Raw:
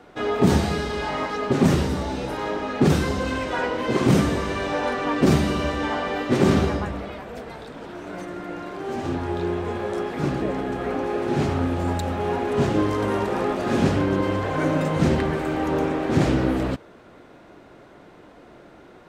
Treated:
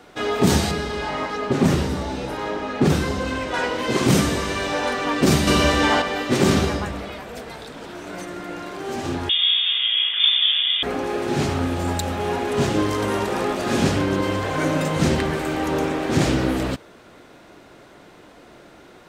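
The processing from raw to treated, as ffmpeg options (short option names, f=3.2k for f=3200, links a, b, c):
-filter_complex "[0:a]asettb=1/sr,asplit=3[a][b][c];[a]atrim=end=0.714[d];[b]atrim=start=0.71:end=3.54,asetpts=PTS-STARTPTS,afade=t=in:d=0.004:c=qsin,afade=t=out:st=2.826:d=0.004:c=qsin,highshelf=f=3.1k:g=-9[e];[c]atrim=start=3.536[f];[d][e]acrossfade=d=0.004:c1=hsin:c2=qsin[g];[g][f]acrossfade=d=0.004:c1=qsin:c2=hsin,asettb=1/sr,asplit=3[h][i][j];[h]atrim=end=5.474[k];[i]atrim=start=5.47:end=6.02,asetpts=PTS-STARTPTS,afade=t=in:d=0.004:c=qsin,afade=t=out:st=0.546:d=0.004:c=qsin,acontrast=58[l];[j]atrim=start=6.016[m];[k][l]acrossfade=d=0.004:c1=hsin:c2=qsin[n];[n][m]acrossfade=d=0.004:c1=qsin:c2=hsin,asettb=1/sr,asplit=3[o][p][q];[o]atrim=end=9.294[r];[p]atrim=start=9.29:end=10.83,asetpts=PTS-STARTPTS,afade=t=in:d=0.004:c=qsin,afade=t=out:st=1.536:d=0.004:c=qsin,lowpass=f=3.1k:t=q:w=0.5098,lowpass=f=3.1k:t=q:w=0.6013,lowpass=f=3.1k:t=q:w=0.9,lowpass=f=3.1k:t=q:w=2.563,afreqshift=-3700[s];[q]atrim=start=10.826[t];[r][s]acrossfade=d=0.004:c1=hsin:c2=qsin[u];[u][t]acrossfade=d=0.004:c1=qsin:c2=hsin,highshelf=f=2.7k:g=10.5"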